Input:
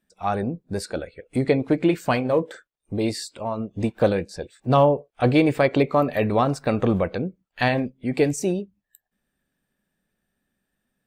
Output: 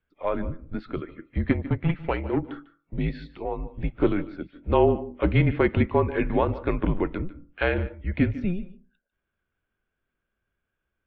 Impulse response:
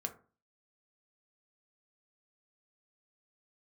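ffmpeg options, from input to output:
-filter_complex "[0:a]asplit=3[a][b][c];[a]afade=t=out:st=1.5:d=0.02[d];[b]aeval=exprs='0.501*(cos(1*acos(clip(val(0)/0.501,-1,1)))-cos(1*PI/2))+0.141*(cos(2*acos(clip(val(0)/0.501,-1,1)))-cos(2*PI/2))+0.0501*(cos(3*acos(clip(val(0)/0.501,-1,1)))-cos(3*PI/2))+0.0562*(cos(4*acos(clip(val(0)/0.501,-1,1)))-cos(4*PI/2))+0.01*(cos(7*acos(clip(val(0)/0.501,-1,1)))-cos(7*PI/2))':c=same,afade=t=in:st=1.5:d=0.02,afade=t=out:st=2.41:d=0.02[e];[c]afade=t=in:st=2.41:d=0.02[f];[d][e][f]amix=inputs=3:normalize=0,asplit=2[g][h];[1:a]atrim=start_sample=2205,adelay=148[i];[h][i]afir=irnorm=-1:irlink=0,volume=-15.5dB[j];[g][j]amix=inputs=2:normalize=0,highpass=f=170:t=q:w=0.5412,highpass=f=170:t=q:w=1.307,lowpass=f=3.3k:t=q:w=0.5176,lowpass=f=3.3k:t=q:w=0.7071,lowpass=f=3.3k:t=q:w=1.932,afreqshift=-180,volume=-2dB"

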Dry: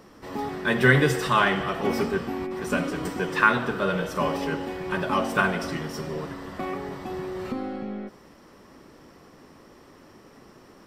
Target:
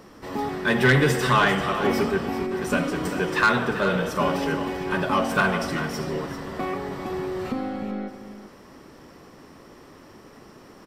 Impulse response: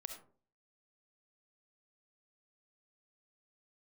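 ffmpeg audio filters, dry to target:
-af "asoftclip=type=tanh:threshold=-14dB,aecho=1:1:392:0.282,volume=3dB"

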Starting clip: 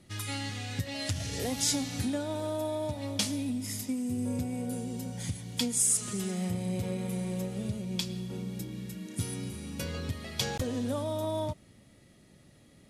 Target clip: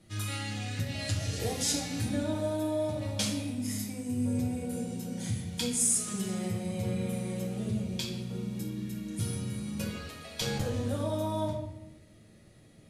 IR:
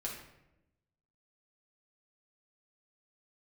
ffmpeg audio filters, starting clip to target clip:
-filter_complex "[0:a]asettb=1/sr,asplit=3[a][b][c];[a]atrim=end=9.894[d];[b]atrim=start=9.89:end=10.41,asetpts=PTS-STARTPTS,afade=t=in:d=0.004:c=qsin,afade=t=out:st=0.516:d=0.004:c=qsin,highpass=510[e];[c]atrim=start=10.406[f];[d][e]acrossfade=d=0.004:c1=hsin:c2=qsin[g];[g][f]acrossfade=d=0.004:c1=qsin:c2=hsin[h];[1:a]atrim=start_sample=2205[i];[h][i]afir=irnorm=-1:irlink=0"

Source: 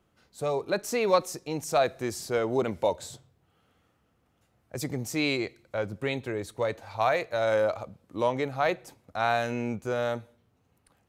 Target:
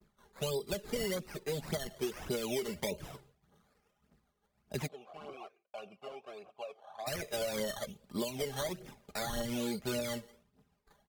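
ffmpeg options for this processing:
-filter_complex "[0:a]lowpass=4k,aecho=1:1:4.9:0.84,acrusher=samples=14:mix=1:aa=0.000001:lfo=1:lforange=8.4:lforate=1.2,aphaser=in_gain=1:out_gain=1:delay=2.6:decay=0.55:speed=1.7:type=triangular,acompressor=threshold=-25dB:ratio=6,asplit=3[a][b][c];[a]afade=t=out:st=4.86:d=0.02[d];[b]asplit=3[e][f][g];[e]bandpass=f=730:t=q:w=8,volume=0dB[h];[f]bandpass=f=1.09k:t=q:w=8,volume=-6dB[i];[g]bandpass=f=2.44k:t=q:w=8,volume=-9dB[j];[h][i][j]amix=inputs=3:normalize=0,afade=t=in:st=4.86:d=0.02,afade=t=out:st=7.06:d=0.02[k];[c]afade=t=in:st=7.06:d=0.02[l];[d][k][l]amix=inputs=3:normalize=0,acrossover=split=480|2300[m][n][o];[m]acompressor=threshold=-34dB:ratio=4[p];[n]acompressor=threshold=-45dB:ratio=4[q];[o]acompressor=threshold=-39dB:ratio=4[r];[p][q][r]amix=inputs=3:normalize=0,agate=range=-33dB:threshold=-59dB:ratio=3:detection=peak" -ar 48000 -c:a libmp3lame -b:a 80k

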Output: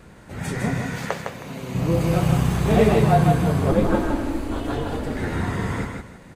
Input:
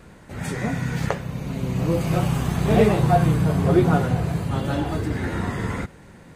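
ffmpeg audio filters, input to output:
-filter_complex "[0:a]asettb=1/sr,asplit=3[a][b][c];[a]atrim=end=0.824[d];[b]atrim=start=0.82:end=1.75,asetpts=PTS-STARTPTS,afade=t=in:d=0.004:c=qsin,afade=t=out:st=0.926:d=0.004:c=qsin,highpass=f=390:p=1[e];[c]atrim=start=1.746[f];[d][e]acrossfade=d=0.004:c1=hsin:c2=qsin[g];[g][f]acrossfade=d=0.004:c1=qsin:c2=hsin,asettb=1/sr,asplit=3[h][i][j];[h]atrim=end=3.714[k];[i]atrim=start=3.71:end=5.17,asetpts=PTS-STARTPTS,afade=t=in:d=0.004:c=qsin,afade=t=out:st=1.456:d=0.004:c=qsin,aeval=exprs='val(0)*sin(2*PI*160*n/s)':c=same[l];[j]atrim=start=5.166[m];[k][l]acrossfade=d=0.004:c1=hsin:c2=qsin[n];[n][m]acrossfade=d=0.004:c1=qsin:c2=hsin,asplit=2[o][p];[p]aecho=0:1:158|316|474:0.596|0.149|0.0372[q];[o][q]amix=inputs=2:normalize=0"

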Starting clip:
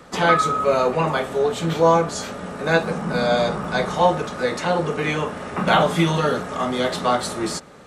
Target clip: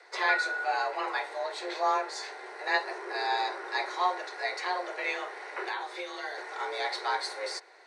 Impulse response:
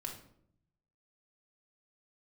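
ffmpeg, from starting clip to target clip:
-filter_complex "[0:a]asettb=1/sr,asplit=3[a][b][c];[a]atrim=end=5.654[d];[b]atrim=start=5.65:end=6.38,asetpts=PTS-STARTPTS,afade=t=in:d=0.004:c=qsin,afade=t=out:st=0.726:d=0.004:c=qsin,acrossover=split=1500|5500[e][f][g];[e]acompressor=threshold=-25dB:ratio=4[h];[f]acompressor=threshold=-35dB:ratio=4[i];[g]acompressor=threshold=-48dB:ratio=4[j];[h][i][j]amix=inputs=3:normalize=0[k];[c]atrim=start=6.376[l];[d][k]acrossfade=d=0.004:c1=hsin:c2=qsin[m];[m][l]acrossfade=d=0.004:c1=qsin:c2=hsin,highpass=270,equalizer=f=450:t=q:w=4:g=-8,equalizer=f=1.1k:t=q:w=4:g=-6,equalizer=f=1.8k:t=q:w=4:g=8,equalizer=f=2.9k:t=q:w=4:g=-7,equalizer=f=4.1k:t=q:w=4:g=7,equalizer=f=7.1k:t=q:w=4:g=-8,lowpass=f=8.5k:w=0.5412,lowpass=f=8.5k:w=1.3066,afreqshift=190,volume=-8.5dB"

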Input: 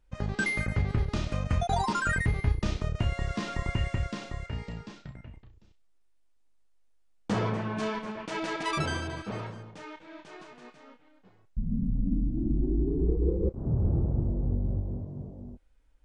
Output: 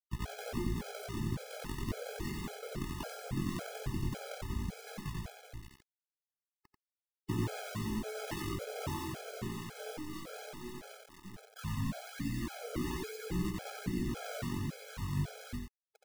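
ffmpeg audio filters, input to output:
-filter_complex "[0:a]asettb=1/sr,asplit=3[a][b][c];[a]atrim=end=4.864[d];[b]atrim=start=4.86:end=5.27,asetpts=PTS-STARTPTS,afade=t=in:d=0.004:c=qsin,afade=t=out:st=0.406:d=0.004:c=qsin,lowpass=f=5.6k:w=0.5412,lowpass=f=5.6k:w=1.3066[e];[c]atrim=start=5.266[f];[d][e]acrossfade=d=0.004:c1=hsin:c2=qsin[g];[g][f]acrossfade=d=0.004:c1=qsin:c2=hsin,afftfilt=real='re*lt(hypot(re,im),0.282)':imag='im*lt(hypot(re,im),0.282)':win_size=1024:overlap=0.75,equalizer=f=740:w=0.83:g=-8.5,acompressor=threshold=-39dB:ratio=16,acrusher=samples=36:mix=1:aa=0.000001:lfo=1:lforange=36:lforate=1.2,flanger=delay=16:depth=6.9:speed=0.15,acrossover=split=470[h][i];[h]aeval=exprs='val(0)*(1-0.5/2+0.5/2*cos(2*PI*1.5*n/s))':c=same[j];[i]aeval=exprs='val(0)*(1-0.5/2-0.5/2*cos(2*PI*1.5*n/s))':c=same[k];[j][k]amix=inputs=2:normalize=0,acrusher=bits=9:mix=0:aa=0.000001,aecho=1:1:90:0.668,afftfilt=real='re*gt(sin(2*PI*1.8*pts/sr)*(1-2*mod(floor(b*sr/1024/430),2)),0)':imag='im*gt(sin(2*PI*1.8*pts/sr)*(1-2*mod(floor(b*sr/1024/430),2)),0)':win_size=1024:overlap=0.75,volume=12dB"

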